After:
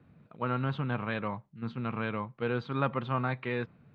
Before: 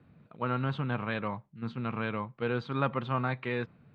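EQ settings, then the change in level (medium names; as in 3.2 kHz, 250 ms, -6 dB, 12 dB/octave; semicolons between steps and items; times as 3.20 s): distance through air 54 m; 0.0 dB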